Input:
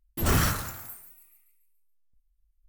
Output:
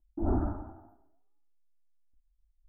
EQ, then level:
elliptic low-pass filter 1,100 Hz, stop band 50 dB
parametric band 310 Hz +7.5 dB 0.23 octaves
phaser with its sweep stopped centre 730 Hz, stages 8
0.0 dB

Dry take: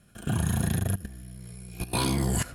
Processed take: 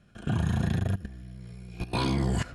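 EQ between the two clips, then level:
high-frequency loss of the air 130 metres
high-shelf EQ 8,600 Hz +6 dB
0.0 dB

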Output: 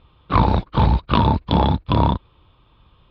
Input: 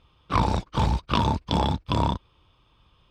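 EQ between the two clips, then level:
high-frequency loss of the air 400 metres
parametric band 4,100 Hz +9.5 dB 0.42 octaves
+7.5 dB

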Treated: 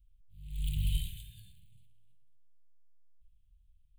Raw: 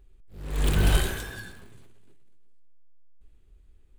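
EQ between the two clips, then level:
elliptic band-stop filter 150–3,000 Hz, stop band 40 dB
phaser with its sweep stopped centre 2,400 Hz, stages 4
−8.5 dB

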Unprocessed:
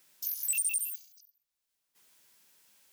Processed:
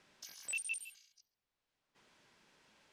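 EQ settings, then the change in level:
head-to-tape spacing loss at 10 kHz 33 dB
high-shelf EQ 5,800 Hz +8 dB
+9.0 dB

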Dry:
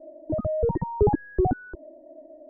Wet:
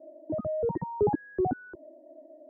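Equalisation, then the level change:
high-pass filter 140 Hz 12 dB per octave
−4.0 dB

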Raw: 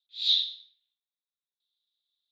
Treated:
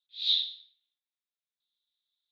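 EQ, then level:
high-pass filter 1,400 Hz
low-pass filter 4,100 Hz 12 dB per octave
0.0 dB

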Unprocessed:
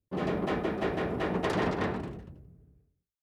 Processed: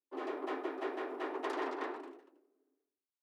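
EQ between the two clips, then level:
Chebyshev high-pass with heavy ripple 260 Hz, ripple 6 dB
−4.5 dB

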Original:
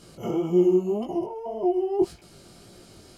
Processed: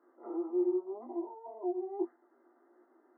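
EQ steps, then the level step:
Chebyshev high-pass with heavy ripple 240 Hz, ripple 9 dB
linear-phase brick-wall low-pass 2,100 Hz
−8.5 dB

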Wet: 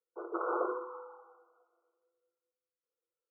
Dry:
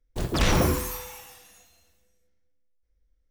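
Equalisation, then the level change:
Chebyshev high-pass with heavy ripple 330 Hz, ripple 9 dB
linear-phase brick-wall low-pass 1,500 Hz
high-frequency loss of the air 390 metres
0.0 dB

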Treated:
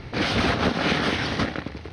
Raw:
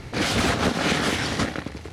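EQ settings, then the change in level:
Savitzky-Golay smoothing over 15 samples
0.0 dB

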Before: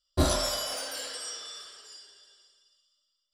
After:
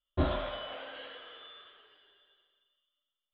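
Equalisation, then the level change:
Butterworth low-pass 3,500 Hz 72 dB per octave
−4.0 dB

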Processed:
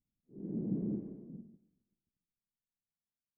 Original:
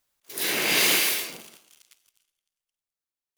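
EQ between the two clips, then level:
transistor ladder low-pass 250 Hz, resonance 45%
+9.0 dB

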